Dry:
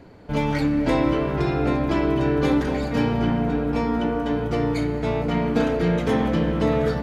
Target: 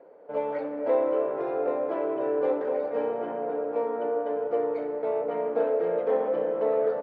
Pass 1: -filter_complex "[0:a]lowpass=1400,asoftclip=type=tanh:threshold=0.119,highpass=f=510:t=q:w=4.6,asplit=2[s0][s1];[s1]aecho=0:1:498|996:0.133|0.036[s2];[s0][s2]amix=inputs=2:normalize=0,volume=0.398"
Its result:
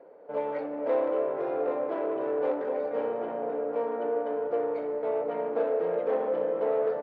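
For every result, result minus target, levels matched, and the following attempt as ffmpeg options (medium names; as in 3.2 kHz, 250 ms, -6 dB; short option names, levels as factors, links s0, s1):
echo 221 ms late; saturation: distortion +10 dB
-filter_complex "[0:a]lowpass=1400,asoftclip=type=tanh:threshold=0.119,highpass=f=510:t=q:w=4.6,asplit=2[s0][s1];[s1]aecho=0:1:277|554:0.133|0.036[s2];[s0][s2]amix=inputs=2:normalize=0,volume=0.398"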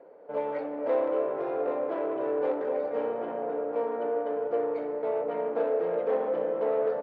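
saturation: distortion +10 dB
-filter_complex "[0:a]lowpass=1400,asoftclip=type=tanh:threshold=0.282,highpass=f=510:t=q:w=4.6,asplit=2[s0][s1];[s1]aecho=0:1:277|554:0.133|0.036[s2];[s0][s2]amix=inputs=2:normalize=0,volume=0.398"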